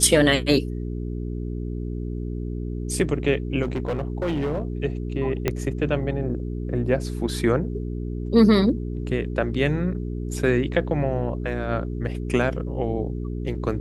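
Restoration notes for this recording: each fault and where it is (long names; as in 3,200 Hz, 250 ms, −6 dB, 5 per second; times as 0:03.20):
mains hum 60 Hz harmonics 7 −29 dBFS
0:03.62–0:04.63: clipping −21 dBFS
0:05.48: click −8 dBFS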